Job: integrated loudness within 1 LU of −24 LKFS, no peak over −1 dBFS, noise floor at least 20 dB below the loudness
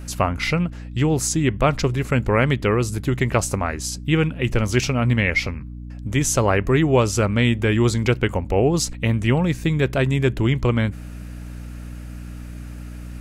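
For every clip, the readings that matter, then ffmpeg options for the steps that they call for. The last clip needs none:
mains hum 60 Hz; hum harmonics up to 300 Hz; level of the hum −33 dBFS; integrated loudness −20.5 LKFS; sample peak −4.5 dBFS; target loudness −24.0 LKFS
→ -af "bandreject=frequency=60:width_type=h:width=4,bandreject=frequency=120:width_type=h:width=4,bandreject=frequency=180:width_type=h:width=4,bandreject=frequency=240:width_type=h:width=4,bandreject=frequency=300:width_type=h:width=4"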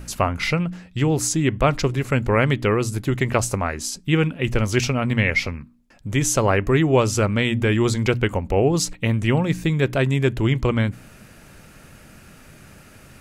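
mains hum none found; integrated loudness −21.0 LKFS; sample peak −5.5 dBFS; target loudness −24.0 LKFS
→ -af "volume=-3dB"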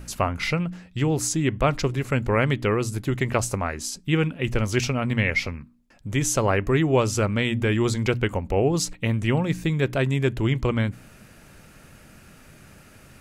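integrated loudness −24.0 LKFS; sample peak −8.5 dBFS; background noise floor −51 dBFS

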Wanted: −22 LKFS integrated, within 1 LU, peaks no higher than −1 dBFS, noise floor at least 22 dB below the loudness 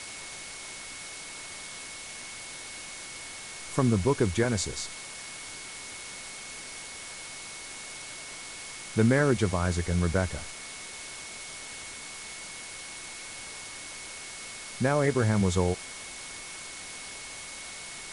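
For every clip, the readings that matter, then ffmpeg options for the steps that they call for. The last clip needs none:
interfering tone 2,200 Hz; level of the tone −46 dBFS; background noise floor −42 dBFS; target noise floor −54 dBFS; integrated loudness −32.0 LKFS; sample peak −10.5 dBFS; target loudness −22.0 LKFS
→ -af "bandreject=frequency=2200:width=30"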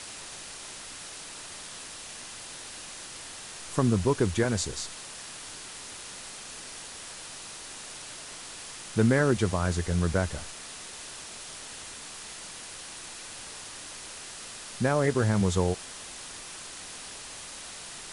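interfering tone none found; background noise floor −43 dBFS; target noise floor −54 dBFS
→ -af "afftdn=noise_reduction=11:noise_floor=-43"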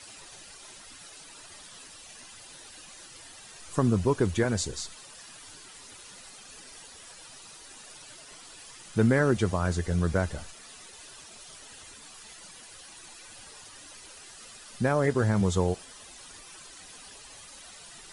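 background noise floor −49 dBFS; integrated loudness −27.0 LKFS; sample peak −11.0 dBFS; target loudness −22.0 LKFS
→ -af "volume=5dB"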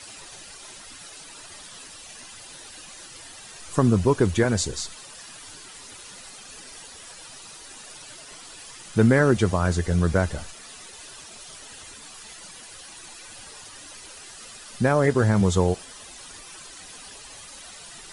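integrated loudness −22.0 LKFS; sample peak −6.0 dBFS; background noise floor −44 dBFS

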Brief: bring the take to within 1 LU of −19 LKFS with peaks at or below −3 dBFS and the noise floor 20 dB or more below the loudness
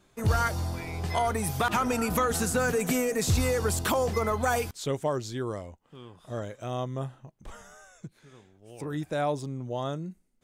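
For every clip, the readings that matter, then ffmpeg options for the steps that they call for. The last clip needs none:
integrated loudness −29.0 LKFS; sample peak −15.5 dBFS; target loudness −19.0 LKFS
→ -af "volume=10dB"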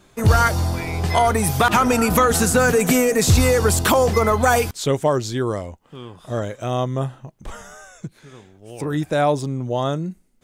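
integrated loudness −19.0 LKFS; sample peak −5.5 dBFS; background noise floor −56 dBFS

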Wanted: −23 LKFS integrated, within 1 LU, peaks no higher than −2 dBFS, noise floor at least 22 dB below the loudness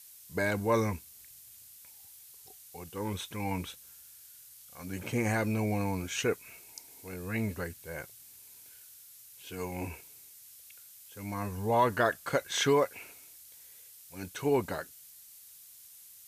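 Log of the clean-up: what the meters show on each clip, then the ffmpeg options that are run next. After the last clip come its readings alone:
background noise floor −54 dBFS; target noise floor −55 dBFS; integrated loudness −32.5 LKFS; sample peak −13.5 dBFS; target loudness −23.0 LKFS
→ -af "afftdn=noise_reduction=6:noise_floor=-54"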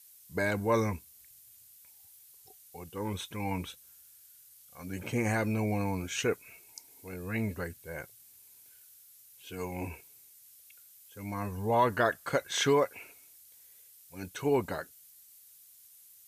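background noise floor −57 dBFS; integrated loudness −32.5 LKFS; sample peak −13.5 dBFS; target loudness −23.0 LKFS
→ -af "volume=9.5dB"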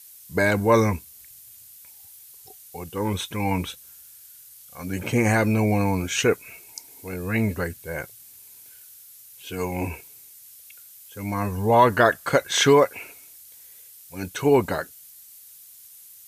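integrated loudness −23.0 LKFS; sample peak −4.0 dBFS; background noise floor −48 dBFS

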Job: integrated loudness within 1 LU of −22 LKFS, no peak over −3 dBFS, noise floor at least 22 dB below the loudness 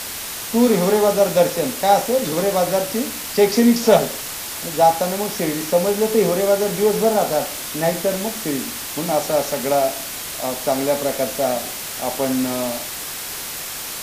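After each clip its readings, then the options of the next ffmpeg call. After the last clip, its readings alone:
background noise floor −30 dBFS; target noise floor −42 dBFS; integrated loudness −19.5 LKFS; sample peak −1.5 dBFS; target loudness −22.0 LKFS
→ -af "afftdn=noise_reduction=12:noise_floor=-30"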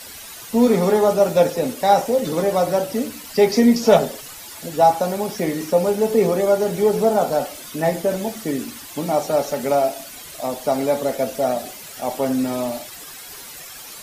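background noise floor −38 dBFS; target noise floor −42 dBFS
→ -af "afftdn=noise_reduction=6:noise_floor=-38"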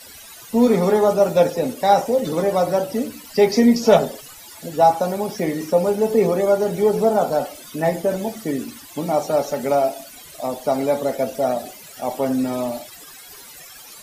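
background noise floor −42 dBFS; integrated loudness −20.0 LKFS; sample peak −2.0 dBFS; target loudness −22.0 LKFS
→ -af "volume=-2dB"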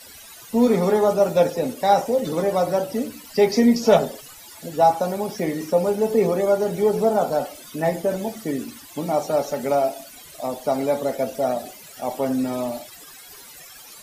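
integrated loudness −22.0 LKFS; sample peak −4.0 dBFS; background noise floor −44 dBFS

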